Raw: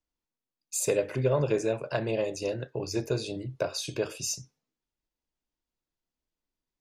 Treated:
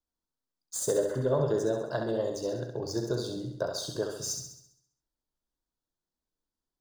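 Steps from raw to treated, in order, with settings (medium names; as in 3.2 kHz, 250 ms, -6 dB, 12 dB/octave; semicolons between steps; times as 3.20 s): median filter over 3 samples; Butterworth band-stop 2.4 kHz, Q 1.5; flutter echo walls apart 11.4 m, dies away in 0.72 s; trim -2 dB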